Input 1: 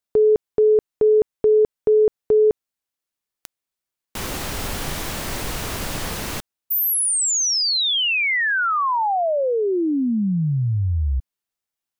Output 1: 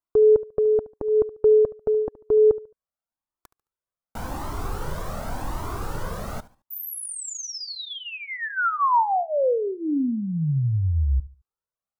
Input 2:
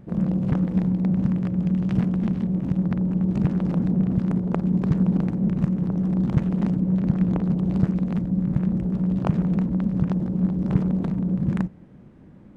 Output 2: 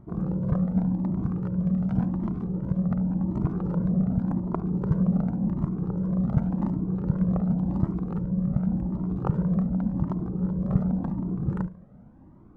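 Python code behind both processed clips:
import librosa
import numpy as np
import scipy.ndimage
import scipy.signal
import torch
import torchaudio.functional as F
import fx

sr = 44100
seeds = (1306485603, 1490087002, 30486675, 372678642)

p1 = fx.high_shelf_res(x, sr, hz=1700.0, db=-10.5, q=1.5)
p2 = fx.notch(p1, sr, hz=1700.0, q=22.0)
p3 = p2 + fx.echo_feedback(p2, sr, ms=72, feedback_pct=30, wet_db=-18.0, dry=0)
p4 = fx.comb_cascade(p3, sr, direction='rising', hz=0.89)
y = p4 * 10.0 ** (1.5 / 20.0)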